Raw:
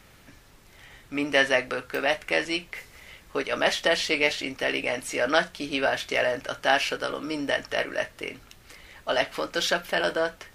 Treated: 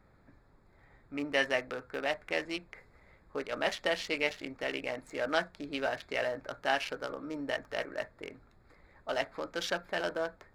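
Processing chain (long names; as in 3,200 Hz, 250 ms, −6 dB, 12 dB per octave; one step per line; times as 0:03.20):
adaptive Wiener filter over 15 samples
level −7.5 dB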